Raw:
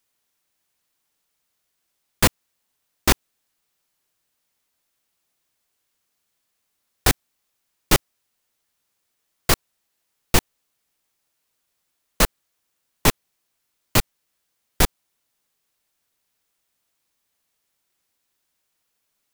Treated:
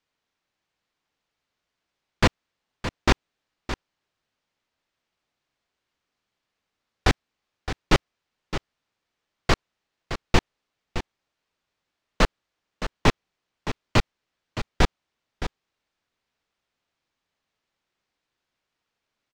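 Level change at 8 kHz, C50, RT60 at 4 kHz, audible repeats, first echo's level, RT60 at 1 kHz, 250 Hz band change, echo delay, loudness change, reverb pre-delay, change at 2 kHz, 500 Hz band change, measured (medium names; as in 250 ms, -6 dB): -13.0 dB, no reverb, no reverb, 1, -11.0 dB, no reverb, 0.0 dB, 616 ms, -5.0 dB, no reverb, -1.0 dB, 0.0 dB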